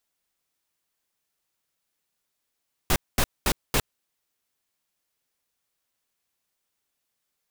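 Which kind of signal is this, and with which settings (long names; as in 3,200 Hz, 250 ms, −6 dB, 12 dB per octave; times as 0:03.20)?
noise bursts pink, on 0.06 s, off 0.22 s, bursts 4, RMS −21 dBFS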